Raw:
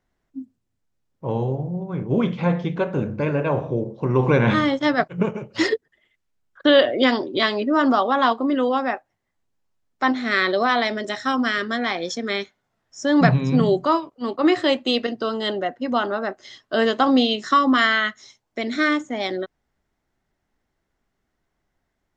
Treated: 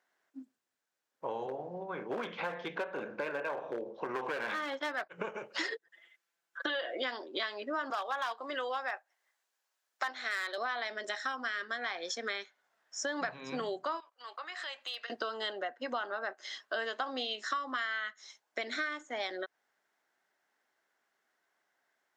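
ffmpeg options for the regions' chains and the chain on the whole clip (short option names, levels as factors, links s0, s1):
-filter_complex "[0:a]asettb=1/sr,asplit=3[s0][s1][s2];[s0]atrim=end=1.464[s3];[s1]atrim=start=1.46:end=5.11,asetpts=PTS-STARTPTS,afade=t=in:d=0.004:c=qsin,afade=t=out:st=3.646:d=0.004:c=qsin,highpass=140,lowpass=4600,volume=6.68,asoftclip=hard,volume=0.15[s4];[s2]atrim=start=5.106[s5];[s3][s4]acrossfade=d=0.004:c1=hsin:c2=qsin[s6];[s6][s5]acrossfade=d=0.004:c1=qsin:c2=hsin,asettb=1/sr,asplit=3[s7][s8][s9];[s7]atrim=end=5.724[s10];[s8]atrim=start=5.72:end=7,asetpts=PTS-STARTPTS,afade=t=in:d=0.004:c=qsin,afade=t=out:st=1.276:d=0.004:c=qsin,aecho=1:1:5.9:0.87,atrim=end_sample=56448,acompressor=threshold=0.2:ratio=2.5:attack=3.2:release=140:knee=1:detection=peak[s11];[s9]atrim=start=6.996[s12];[s10][s11]acrossfade=d=0.004:c1=hsin:c2=qsin[s13];[s13][s12]acrossfade=d=0.004:c1=qsin:c2=hsin,asettb=1/sr,asplit=3[s14][s15][s16];[s14]atrim=end=7.904[s17];[s15]atrim=start=7.9:end=10.58,asetpts=PTS-STARTPTS,afade=t=in:d=0.004:c=qsin,afade=t=out:st=2.676:d=0.004:c=qsin,highpass=400,highshelf=f=2700:g=6,asoftclip=type=hard:threshold=0.2[s18];[s16]atrim=start=10.576[s19];[s17][s18]acrossfade=d=0.004:c1=hsin:c2=qsin[s20];[s20][s19]acrossfade=d=0.004:c1=qsin:c2=hsin,asettb=1/sr,asplit=3[s21][s22][s23];[s21]atrim=end=14.004[s24];[s22]atrim=start=14:end=15.1,asetpts=PTS-STARTPTS,afade=t=in:d=0.004:c=qsin,afade=t=out:st=1.096:d=0.004:c=qsin,acompressor=threshold=0.0251:ratio=6:attack=3.2:release=140:knee=1:detection=peak,highpass=1000,asoftclip=type=hard:threshold=0.0376[s25];[s23]atrim=start=15.096[s26];[s24][s25]acrossfade=d=0.004:c1=hsin:c2=qsin[s27];[s27][s26]acrossfade=d=0.004:c1=qsin:c2=hsin,highpass=580,equalizer=f=1600:t=o:w=0.33:g=6,acompressor=threshold=0.02:ratio=6"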